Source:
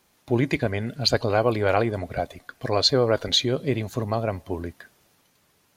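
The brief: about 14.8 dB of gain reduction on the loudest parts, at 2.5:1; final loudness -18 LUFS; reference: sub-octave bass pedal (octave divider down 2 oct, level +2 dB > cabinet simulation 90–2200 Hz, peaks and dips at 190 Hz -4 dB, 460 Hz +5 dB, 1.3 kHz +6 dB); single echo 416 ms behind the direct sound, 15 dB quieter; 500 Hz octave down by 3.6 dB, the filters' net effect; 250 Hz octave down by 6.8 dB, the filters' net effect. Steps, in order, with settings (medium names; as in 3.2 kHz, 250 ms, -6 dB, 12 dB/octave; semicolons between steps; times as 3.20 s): peaking EQ 250 Hz -7 dB; peaking EQ 500 Hz -5.5 dB; compression 2.5:1, threshold -39 dBFS; delay 416 ms -15 dB; octave divider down 2 oct, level +2 dB; cabinet simulation 90–2200 Hz, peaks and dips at 190 Hz -4 dB, 460 Hz +5 dB, 1.3 kHz +6 dB; trim +21 dB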